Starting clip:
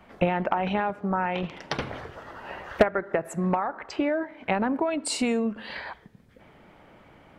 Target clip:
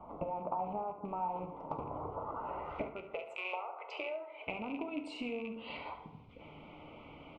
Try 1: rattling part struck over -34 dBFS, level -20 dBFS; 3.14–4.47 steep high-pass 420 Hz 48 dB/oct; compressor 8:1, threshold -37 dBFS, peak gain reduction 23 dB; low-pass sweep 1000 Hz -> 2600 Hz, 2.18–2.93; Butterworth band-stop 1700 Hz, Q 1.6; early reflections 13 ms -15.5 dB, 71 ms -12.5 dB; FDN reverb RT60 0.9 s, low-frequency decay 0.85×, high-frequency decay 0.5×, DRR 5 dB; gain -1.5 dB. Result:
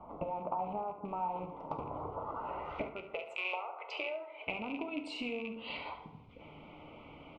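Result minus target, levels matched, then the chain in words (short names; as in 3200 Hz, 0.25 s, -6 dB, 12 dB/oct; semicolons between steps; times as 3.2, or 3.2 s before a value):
4000 Hz band +3.5 dB
rattling part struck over -34 dBFS, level -20 dBFS; 3.14–4.47 steep high-pass 420 Hz 48 dB/oct; compressor 8:1, threshold -37 dBFS, peak gain reduction 23 dB; dynamic EQ 4100 Hz, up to -6 dB, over -56 dBFS, Q 0.73; low-pass sweep 1000 Hz -> 2600 Hz, 2.18–2.93; Butterworth band-stop 1700 Hz, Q 1.6; early reflections 13 ms -15.5 dB, 71 ms -12.5 dB; FDN reverb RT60 0.9 s, low-frequency decay 0.85×, high-frequency decay 0.5×, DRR 5 dB; gain -1.5 dB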